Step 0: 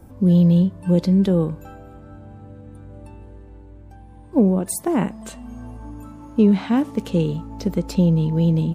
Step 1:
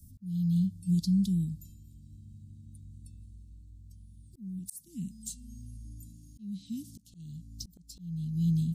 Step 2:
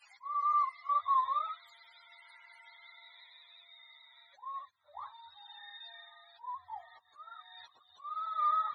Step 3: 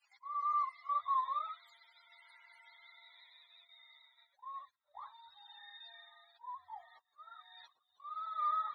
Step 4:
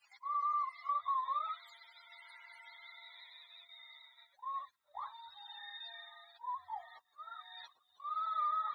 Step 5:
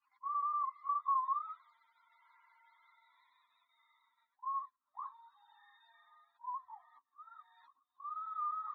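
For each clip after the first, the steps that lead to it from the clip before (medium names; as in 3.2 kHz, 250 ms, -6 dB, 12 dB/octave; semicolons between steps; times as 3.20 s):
inverse Chebyshev band-stop 590–1500 Hz, stop band 70 dB; treble shelf 3.5 kHz +10 dB; slow attack 541 ms; trim -7.5 dB
spectrum inverted on a logarithmic axis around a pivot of 450 Hz; trim -1 dB
gate -59 dBFS, range -11 dB; bass shelf 250 Hz -7.5 dB; trim -4 dB
compression 6:1, threshold -38 dBFS, peak gain reduction 8.5 dB; trim +5.5 dB
two resonant band-passes 540 Hz, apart 2 oct; trim +3 dB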